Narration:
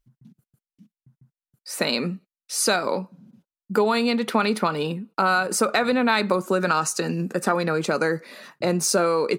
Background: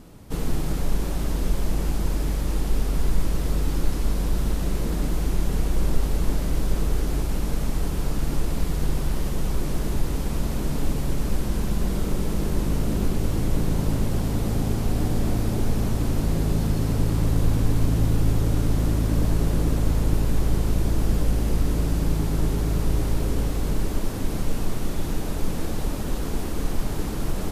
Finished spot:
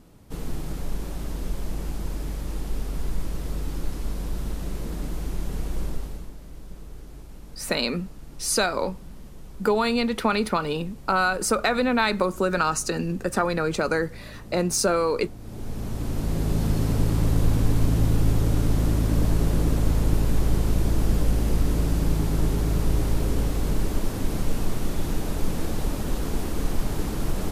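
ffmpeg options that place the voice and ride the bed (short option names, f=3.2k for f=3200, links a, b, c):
-filter_complex "[0:a]adelay=5900,volume=-1.5dB[a];[1:a]volume=12dB,afade=t=out:st=5.8:d=0.51:silence=0.251189,afade=t=in:st=15.39:d=1.34:silence=0.125893[b];[a][b]amix=inputs=2:normalize=0"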